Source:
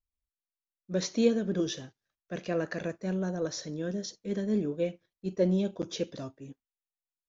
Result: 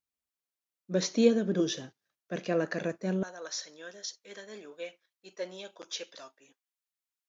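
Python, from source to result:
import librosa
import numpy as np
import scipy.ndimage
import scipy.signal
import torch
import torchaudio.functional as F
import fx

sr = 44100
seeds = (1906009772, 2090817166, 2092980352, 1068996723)

y = fx.highpass(x, sr, hz=fx.steps((0.0, 150.0), (3.23, 1000.0)), slope=12)
y = y * librosa.db_to_amplitude(2.0)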